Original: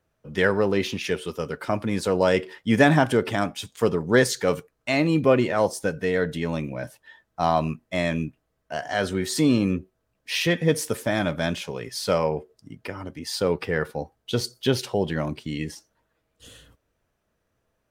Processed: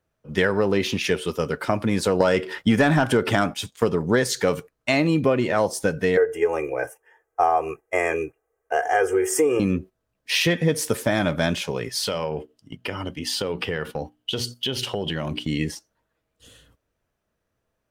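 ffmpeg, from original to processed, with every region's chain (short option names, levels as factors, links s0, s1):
-filter_complex "[0:a]asettb=1/sr,asplit=3[s0][s1][s2];[s0]atrim=end=2.204[s3];[s1]atrim=start=2.2:end=3.54,asetpts=PTS-STARTPTS,afade=t=in:d=0.004:c=qsin,afade=t=out:st=1.336:d=0.004:c=qsin,equalizer=f=1400:t=o:w=0.26:g=5,acontrast=71[s4];[s2]atrim=start=3.536[s5];[s3][s4]acrossfade=d=0.004:c1=hsin:c2=qsin[s6];[s6][s5]acrossfade=d=0.004:c1=qsin:c2=hsin,asettb=1/sr,asplit=3[s7][s8][s9];[s7]atrim=end=6.174[s10];[s8]atrim=start=6.17:end=9.6,asetpts=PTS-STARTPTS,afade=t=in:d=0.004:c=qsin,afade=t=out:st=3.426:d=0.004:c=qsin,asuperstop=centerf=4000:order=4:qfactor=1,lowshelf=f=320:t=q:w=3:g=-11.5,aecho=1:1:2.5:0.82,atrim=end_sample=151263[s11];[s9]atrim=start=9.596[s12];[s10][s11]acrossfade=d=0.004:c1=hsin:c2=qsin[s13];[s13][s12]acrossfade=d=0.004:c1=qsin:c2=hsin,asettb=1/sr,asplit=3[s14][s15][s16];[s14]atrim=end=12.034[s17];[s15]atrim=start=12.03:end=15.46,asetpts=PTS-STARTPTS,afade=t=in:d=0.004:c=qsin,afade=t=out:st=3.426:d=0.004:c=qsin,equalizer=f=3000:t=o:w=0.3:g=13.5,bandreject=f=60:t=h:w=6,bandreject=f=120:t=h:w=6,bandreject=f=180:t=h:w=6,bandreject=f=240:t=h:w=6,bandreject=f=300:t=h:w=6,acompressor=threshold=0.0447:ratio=6:attack=3.2:release=140:knee=1:detection=peak[s18];[s16]atrim=start=15.456[s19];[s17][s18]acrossfade=d=0.004:c1=hsin:c2=qsin[s20];[s20][s19]acrossfade=d=0.004:c1=qsin:c2=hsin,agate=range=0.398:threshold=0.0112:ratio=16:detection=peak,acompressor=threshold=0.0891:ratio=6,volume=1.78"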